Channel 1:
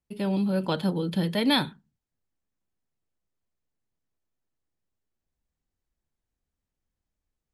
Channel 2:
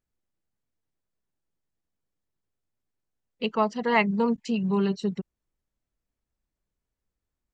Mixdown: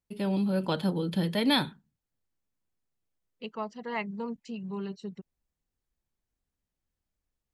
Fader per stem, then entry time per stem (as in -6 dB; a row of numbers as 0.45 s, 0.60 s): -2.0 dB, -11.5 dB; 0.00 s, 0.00 s